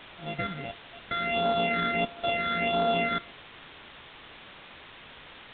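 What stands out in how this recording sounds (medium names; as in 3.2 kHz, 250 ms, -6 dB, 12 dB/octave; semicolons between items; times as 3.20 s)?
a buzz of ramps at a fixed pitch in blocks of 64 samples; phasing stages 8, 1.5 Hz, lowest notch 790–2300 Hz; a quantiser's noise floor 8-bit, dither triangular; µ-law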